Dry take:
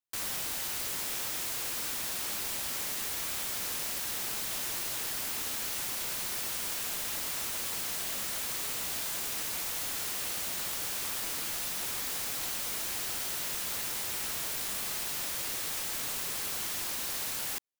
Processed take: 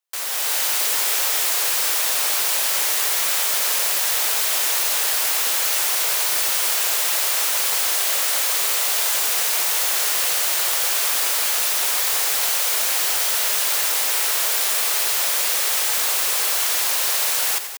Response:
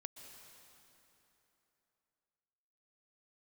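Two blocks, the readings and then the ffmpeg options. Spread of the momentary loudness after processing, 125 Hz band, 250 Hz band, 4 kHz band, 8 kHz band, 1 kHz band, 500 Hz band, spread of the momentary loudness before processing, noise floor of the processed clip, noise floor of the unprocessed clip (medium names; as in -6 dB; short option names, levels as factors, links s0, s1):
0 LU, under -20 dB, no reading, +14.5 dB, +14.5 dB, +14.5 dB, +13.0 dB, 0 LU, -21 dBFS, -35 dBFS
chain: -filter_complex "[0:a]highpass=f=450:w=0.5412,highpass=f=450:w=1.3066,dynaudnorm=f=260:g=3:m=2.11,asplit=2[s0][s1];[s1]aecho=0:1:87.46|186.6:0.251|0.282[s2];[s0][s2]amix=inputs=2:normalize=0,volume=2.37"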